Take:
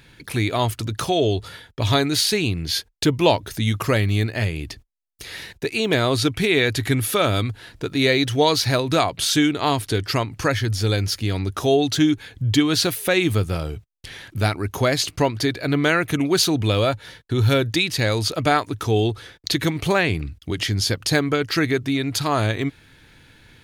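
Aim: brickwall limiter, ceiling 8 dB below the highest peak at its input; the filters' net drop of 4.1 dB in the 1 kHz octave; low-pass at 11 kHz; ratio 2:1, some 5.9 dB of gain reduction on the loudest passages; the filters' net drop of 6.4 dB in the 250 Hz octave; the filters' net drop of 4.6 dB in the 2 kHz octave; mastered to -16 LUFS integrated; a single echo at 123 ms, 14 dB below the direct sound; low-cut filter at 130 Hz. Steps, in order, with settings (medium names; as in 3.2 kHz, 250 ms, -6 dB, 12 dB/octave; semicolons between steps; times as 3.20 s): high-pass 130 Hz; low-pass 11 kHz; peaking EQ 250 Hz -8 dB; peaking EQ 1 kHz -4 dB; peaking EQ 2 kHz -4.5 dB; compression 2:1, threshold -26 dBFS; peak limiter -17 dBFS; delay 123 ms -14 dB; trim +13 dB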